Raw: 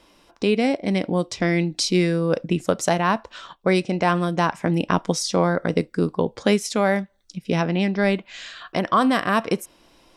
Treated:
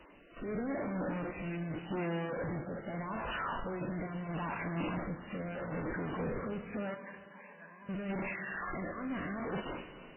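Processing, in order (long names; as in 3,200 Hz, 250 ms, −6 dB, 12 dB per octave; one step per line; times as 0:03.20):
converter with a step at zero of −24 dBFS
noise gate with hold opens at −26 dBFS
transient designer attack −5 dB, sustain +1 dB
brickwall limiter −14.5 dBFS, peak gain reduction 7.5 dB
0:01.39–0:02.17: leveller curve on the samples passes 5
0:08.77–0:09.23: compressor whose output falls as the input rises −26 dBFS, ratio −1
tube saturation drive 33 dB, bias 0.25
shaped tremolo saw down 2.1 Hz, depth 35%
0:06.94–0:07.89: pair of resonant band-passes 1,300 Hz, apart 0.7 octaves
rotating-speaker cabinet horn 0.8 Hz
four-comb reverb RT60 2.8 s, combs from 26 ms, DRR 9 dB
MP3 8 kbit/s 8,000 Hz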